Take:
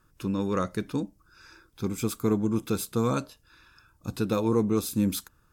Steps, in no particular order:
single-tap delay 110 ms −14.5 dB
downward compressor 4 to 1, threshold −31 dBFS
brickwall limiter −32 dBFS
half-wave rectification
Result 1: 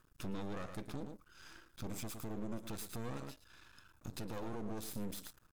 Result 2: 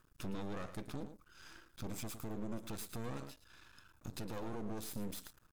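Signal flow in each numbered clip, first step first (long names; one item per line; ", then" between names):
single-tap delay, then downward compressor, then half-wave rectification, then brickwall limiter
downward compressor, then single-tap delay, then half-wave rectification, then brickwall limiter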